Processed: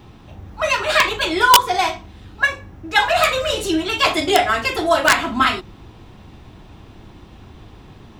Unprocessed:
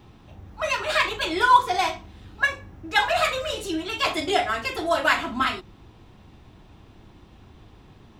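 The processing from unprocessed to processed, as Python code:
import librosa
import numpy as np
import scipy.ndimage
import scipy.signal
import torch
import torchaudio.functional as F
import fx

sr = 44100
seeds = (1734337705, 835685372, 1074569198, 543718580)

p1 = fx.rider(x, sr, range_db=4, speed_s=0.5)
p2 = x + (p1 * 10.0 ** (1.0 / 20.0))
y = (np.mod(10.0 ** (2.5 / 20.0) * p2 + 1.0, 2.0) - 1.0) / 10.0 ** (2.5 / 20.0)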